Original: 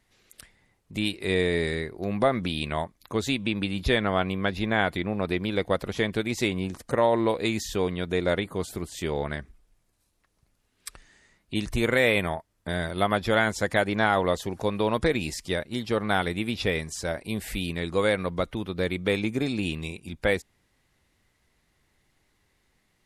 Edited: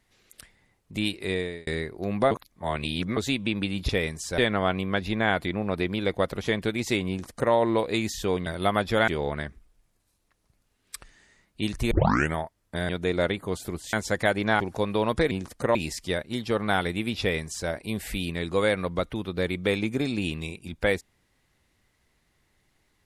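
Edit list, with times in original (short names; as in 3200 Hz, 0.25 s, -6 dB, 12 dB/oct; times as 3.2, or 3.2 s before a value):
1.18–1.67 fade out
2.31–3.17 reverse
6.6–7.04 copy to 15.16
7.97–9.01 swap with 12.82–13.44
11.84 tape start 0.44 s
14.11–14.45 cut
16.61–17.1 copy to 3.89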